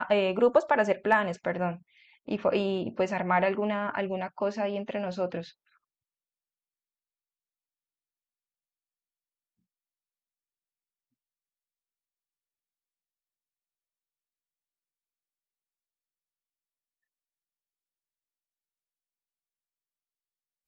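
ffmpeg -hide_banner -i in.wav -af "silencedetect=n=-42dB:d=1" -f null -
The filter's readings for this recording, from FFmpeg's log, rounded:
silence_start: 5.49
silence_end: 20.67 | silence_duration: 15.18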